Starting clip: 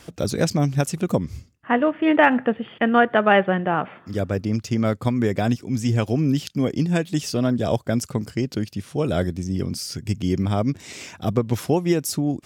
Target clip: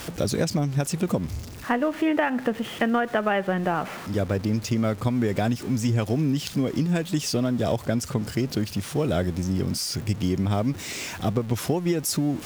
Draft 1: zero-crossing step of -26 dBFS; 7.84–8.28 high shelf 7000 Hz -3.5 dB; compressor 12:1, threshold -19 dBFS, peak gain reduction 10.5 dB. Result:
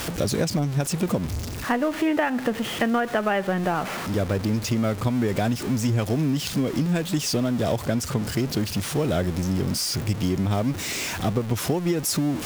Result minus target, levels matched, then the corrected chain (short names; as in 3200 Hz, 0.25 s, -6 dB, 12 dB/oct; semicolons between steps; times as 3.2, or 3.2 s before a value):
zero-crossing step: distortion +7 dB
zero-crossing step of -33.5 dBFS; 7.84–8.28 high shelf 7000 Hz -3.5 dB; compressor 12:1, threshold -19 dBFS, peak gain reduction 10 dB